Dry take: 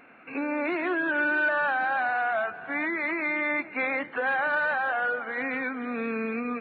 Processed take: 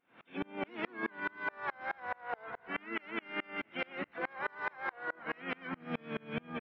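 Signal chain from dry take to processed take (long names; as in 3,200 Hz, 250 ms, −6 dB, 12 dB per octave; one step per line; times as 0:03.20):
pitch-shifted copies added −7 semitones −6 dB, −5 semitones −13 dB, +5 semitones −7 dB
brickwall limiter −22 dBFS, peak gain reduction 9 dB
echo with shifted repeats 398 ms, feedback 55%, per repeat −52 Hz, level −16.5 dB
tremolo with a ramp in dB swelling 4.7 Hz, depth 33 dB
level −1 dB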